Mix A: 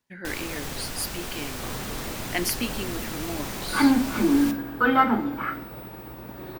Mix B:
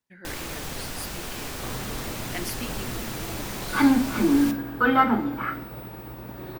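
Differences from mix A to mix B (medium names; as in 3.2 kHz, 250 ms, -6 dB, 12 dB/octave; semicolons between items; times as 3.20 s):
speech -7.5 dB; second sound: add peaking EQ 88 Hz +6 dB 1 oct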